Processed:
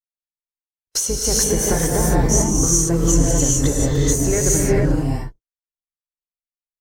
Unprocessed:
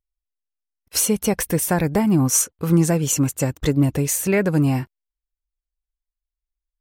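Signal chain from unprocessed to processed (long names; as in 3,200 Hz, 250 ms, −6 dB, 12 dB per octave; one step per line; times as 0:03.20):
sub-octave generator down 2 octaves, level +1 dB
thirty-one-band graphic EQ 200 Hz −8 dB, 400 Hz +4 dB, 2,500 Hz −9 dB, 6,300 Hz +11 dB, 12,500 Hz −7 dB
noise gate −33 dBFS, range −35 dB
downward compressor 3 to 1, threshold −20 dBFS, peak gain reduction 9 dB
reverb whose tail is shaped and stops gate 470 ms rising, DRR −4.5 dB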